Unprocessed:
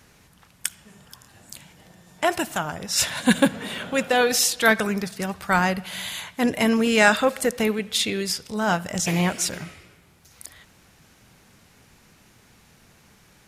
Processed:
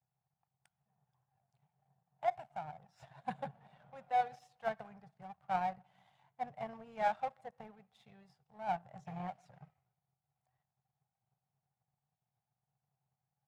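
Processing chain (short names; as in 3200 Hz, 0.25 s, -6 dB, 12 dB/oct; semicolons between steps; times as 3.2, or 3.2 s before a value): bin magnitudes rounded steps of 15 dB; double band-pass 320 Hz, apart 2.5 oct; power-law curve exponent 1.4; gain -2.5 dB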